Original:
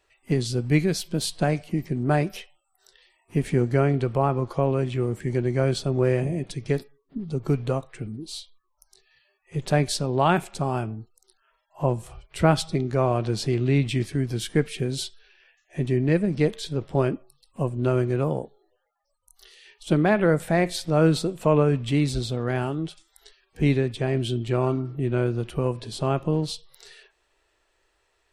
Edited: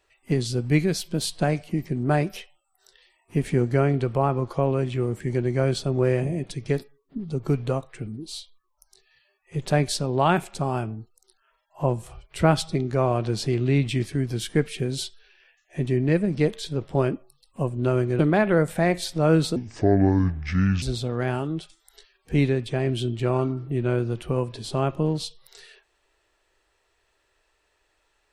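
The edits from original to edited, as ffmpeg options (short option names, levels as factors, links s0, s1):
-filter_complex "[0:a]asplit=4[s0][s1][s2][s3];[s0]atrim=end=18.192[s4];[s1]atrim=start=19.908:end=21.284[s5];[s2]atrim=start=21.28:end=22.1,asetpts=PTS-STARTPTS,asetrate=28665,aresample=44100[s6];[s3]atrim=start=22.096[s7];[s4][s5]acrossfade=d=0.004:c1=hsin:c2=hsin[s8];[s8][s6]acrossfade=d=0.004:c1=hsin:c2=hsin[s9];[s9][s7]acrossfade=d=0.004:c1=hsin:c2=hsin"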